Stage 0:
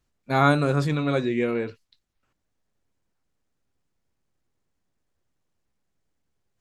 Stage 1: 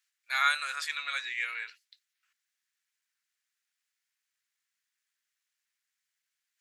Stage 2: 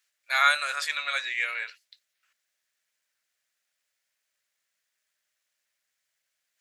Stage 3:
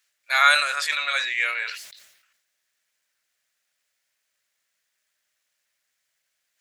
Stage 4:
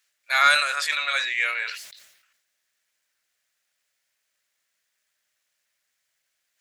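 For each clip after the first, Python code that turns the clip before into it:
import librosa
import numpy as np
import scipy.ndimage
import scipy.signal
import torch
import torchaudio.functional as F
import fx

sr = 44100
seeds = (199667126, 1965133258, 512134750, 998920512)

y1 = scipy.signal.sosfilt(scipy.signal.cheby1(3, 1.0, 1700.0, 'highpass', fs=sr, output='sos'), x)
y1 = y1 * 10.0 ** (3.5 / 20.0)
y2 = fx.peak_eq(y1, sr, hz=600.0, db=12.0, octaves=0.52)
y2 = y2 * 10.0 ** (4.5 / 20.0)
y3 = fx.sustainer(y2, sr, db_per_s=65.0)
y3 = y3 * 10.0 ** (4.0 / 20.0)
y4 = 10.0 ** (-5.5 / 20.0) * np.tanh(y3 / 10.0 ** (-5.5 / 20.0))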